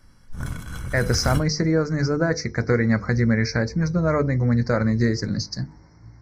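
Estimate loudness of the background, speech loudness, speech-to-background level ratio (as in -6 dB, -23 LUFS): -31.5 LUFS, -22.0 LUFS, 9.5 dB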